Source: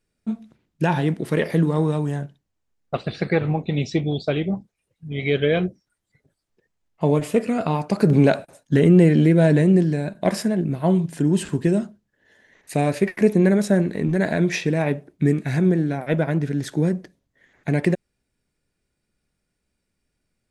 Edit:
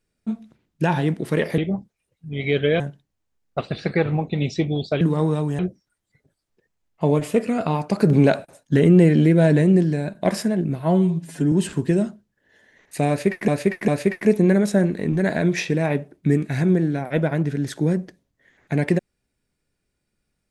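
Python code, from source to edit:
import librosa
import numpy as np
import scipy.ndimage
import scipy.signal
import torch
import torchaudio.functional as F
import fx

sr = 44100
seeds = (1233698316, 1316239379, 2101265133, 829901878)

y = fx.edit(x, sr, fx.swap(start_s=1.58, length_s=0.58, other_s=4.37, other_length_s=1.22),
    fx.stretch_span(start_s=10.8, length_s=0.48, factor=1.5),
    fx.repeat(start_s=12.84, length_s=0.4, count=3), tone=tone)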